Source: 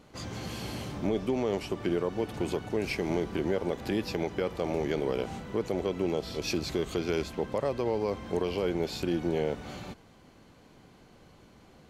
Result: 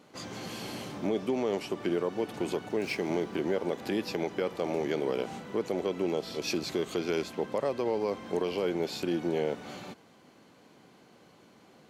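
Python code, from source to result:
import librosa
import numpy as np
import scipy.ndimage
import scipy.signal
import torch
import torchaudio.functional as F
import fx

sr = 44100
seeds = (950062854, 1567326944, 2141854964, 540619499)

y = fx.median_filter(x, sr, points=3, at=(2.68, 3.68))
y = scipy.signal.sosfilt(scipy.signal.butter(2, 180.0, 'highpass', fs=sr, output='sos'), y)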